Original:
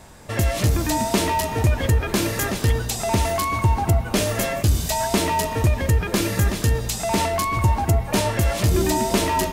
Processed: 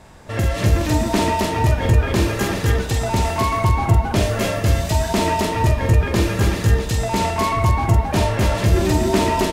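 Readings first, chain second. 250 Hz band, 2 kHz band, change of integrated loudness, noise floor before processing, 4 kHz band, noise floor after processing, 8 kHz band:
+3.0 dB, +2.0 dB, +2.5 dB, -30 dBFS, +0.5 dB, -26 dBFS, -3.0 dB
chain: high shelf 6700 Hz -11 dB; loudspeakers at several distances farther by 16 m -4 dB, 92 m -2 dB

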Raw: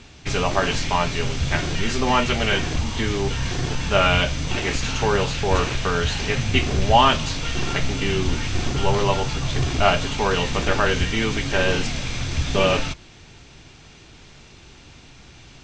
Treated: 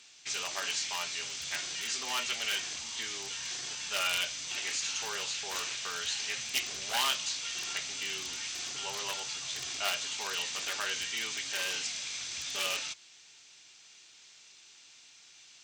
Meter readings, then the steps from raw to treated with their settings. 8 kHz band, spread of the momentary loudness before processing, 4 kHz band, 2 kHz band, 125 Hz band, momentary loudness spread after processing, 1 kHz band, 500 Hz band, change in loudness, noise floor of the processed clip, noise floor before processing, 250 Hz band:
-1.0 dB, 7 LU, -6.5 dB, -11.0 dB, -36.0 dB, 6 LU, -18.0 dB, -23.5 dB, -11.0 dB, -57 dBFS, -47 dBFS, -29.0 dB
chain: one-sided fold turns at -13.5 dBFS; differentiator; notches 50/100 Hz

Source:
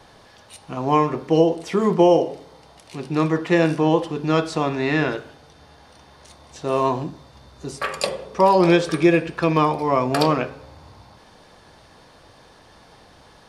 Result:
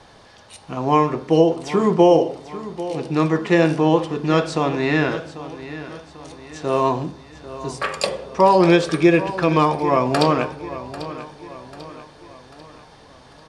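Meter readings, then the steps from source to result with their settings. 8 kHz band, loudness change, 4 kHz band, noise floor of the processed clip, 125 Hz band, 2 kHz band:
+1.0 dB, +1.5 dB, +1.5 dB, -47 dBFS, +1.5 dB, +1.5 dB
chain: LPF 10000 Hz 24 dB/oct; on a send: feedback echo 0.793 s, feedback 47%, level -14.5 dB; on the sum: gain +1.5 dB

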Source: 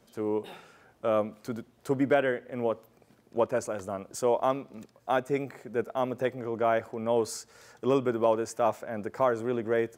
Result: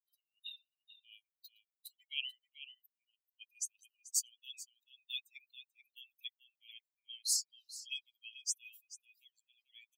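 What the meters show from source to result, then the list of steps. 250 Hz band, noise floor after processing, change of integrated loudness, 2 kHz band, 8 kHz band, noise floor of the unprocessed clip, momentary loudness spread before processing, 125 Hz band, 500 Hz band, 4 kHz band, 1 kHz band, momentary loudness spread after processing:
under -40 dB, under -85 dBFS, -10.5 dB, -14.5 dB, +6.0 dB, -64 dBFS, 11 LU, under -40 dB, under -40 dB, +5.0 dB, under -40 dB, 22 LU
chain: per-bin expansion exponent 3; steep high-pass 2600 Hz 96 dB/oct; outdoor echo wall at 75 m, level -9 dB; gain +11.5 dB

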